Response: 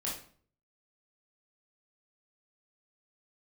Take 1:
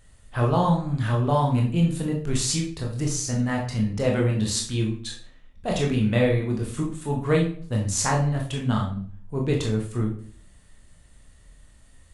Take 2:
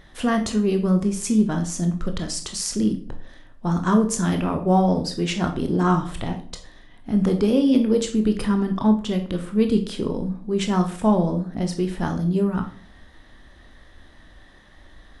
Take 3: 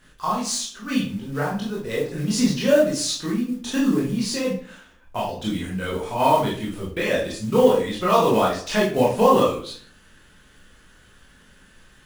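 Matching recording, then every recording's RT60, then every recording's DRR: 3; 0.50, 0.50, 0.50 s; -1.0, 5.0, -5.5 dB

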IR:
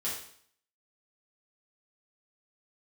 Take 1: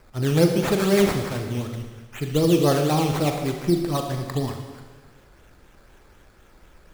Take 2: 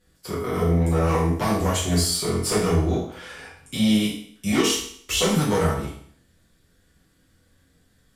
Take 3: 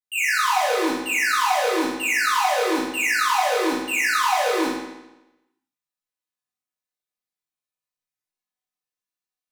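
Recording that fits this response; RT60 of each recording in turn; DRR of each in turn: 2; 1.4, 0.60, 0.95 s; 3.5, -8.0, -11.0 dB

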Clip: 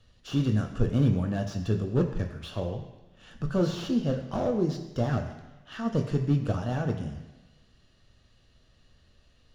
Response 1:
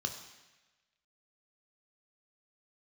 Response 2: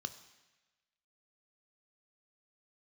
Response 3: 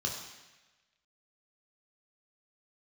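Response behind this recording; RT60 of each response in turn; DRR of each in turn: 1; 1.1, 1.2, 1.1 s; 4.5, 10.0, -1.0 dB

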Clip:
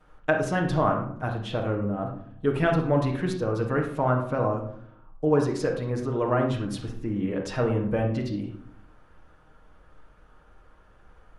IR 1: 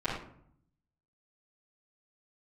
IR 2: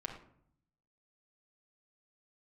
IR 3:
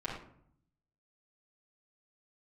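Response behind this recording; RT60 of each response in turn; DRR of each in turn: 3; 0.65, 0.65, 0.65 s; -15.5, -1.5, -9.5 dB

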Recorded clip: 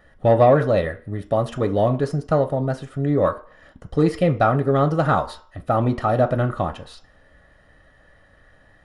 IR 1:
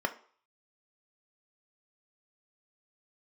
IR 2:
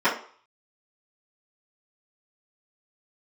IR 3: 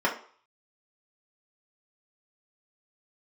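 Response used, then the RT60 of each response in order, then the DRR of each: 1; 0.50, 0.50, 0.50 s; 6.0, -13.0, -3.5 dB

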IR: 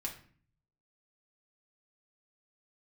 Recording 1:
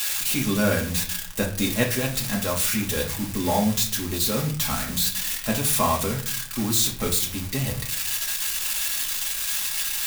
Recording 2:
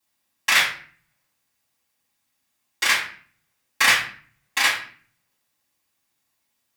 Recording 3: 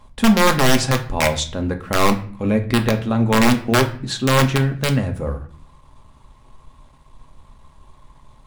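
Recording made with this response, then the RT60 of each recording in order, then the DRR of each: 1; 0.45, 0.45, 0.45 s; -2.0, -11.0, 4.0 dB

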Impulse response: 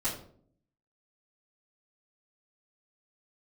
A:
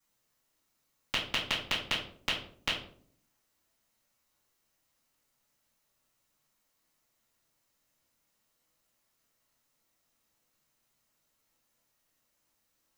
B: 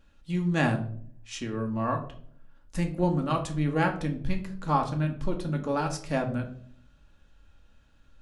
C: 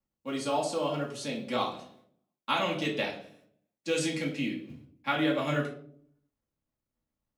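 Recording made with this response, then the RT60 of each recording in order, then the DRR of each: A; 0.55, 0.55, 0.55 s; -13.5, 2.5, -4.5 dB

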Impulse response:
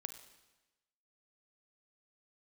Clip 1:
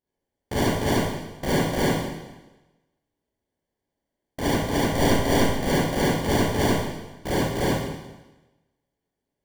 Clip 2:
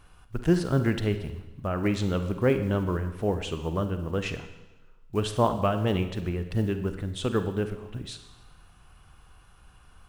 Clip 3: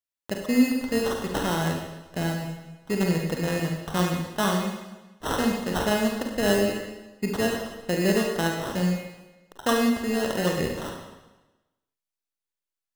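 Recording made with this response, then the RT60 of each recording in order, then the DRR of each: 2; 1.1, 1.1, 1.1 s; -8.5, 8.5, 1.0 dB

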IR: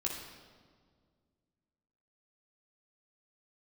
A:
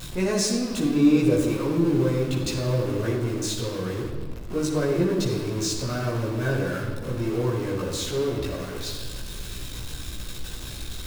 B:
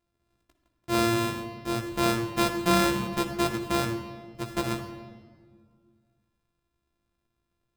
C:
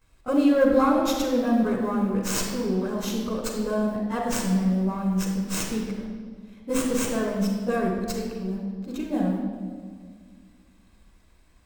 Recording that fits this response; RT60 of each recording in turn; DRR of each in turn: A; 1.8, 1.9, 1.8 s; -4.0, 3.5, -13.0 dB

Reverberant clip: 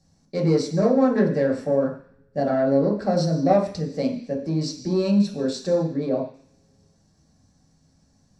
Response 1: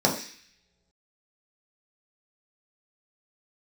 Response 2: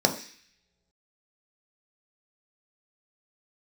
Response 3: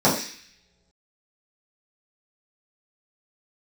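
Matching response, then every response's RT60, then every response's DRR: 1; not exponential, not exponential, not exponential; -2.5, 3.0, -10.0 dB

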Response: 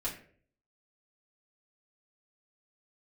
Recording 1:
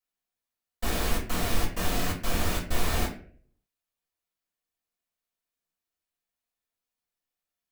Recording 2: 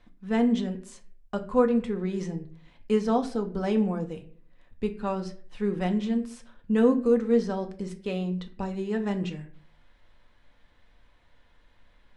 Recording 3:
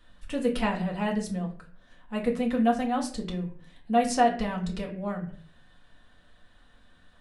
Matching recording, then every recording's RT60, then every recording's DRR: 1; 0.50, 0.50, 0.50 s; -7.5, 4.5, -1.5 dB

